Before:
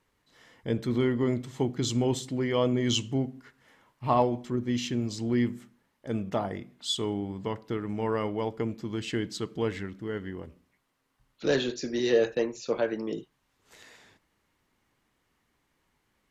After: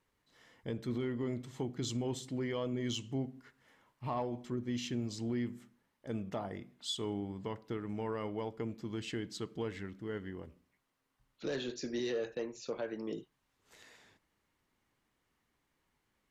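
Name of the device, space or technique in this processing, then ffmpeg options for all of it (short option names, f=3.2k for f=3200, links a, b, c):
soft clipper into limiter: -af "asoftclip=type=tanh:threshold=-13.5dB,alimiter=limit=-22dB:level=0:latency=1:release=255,volume=-6dB"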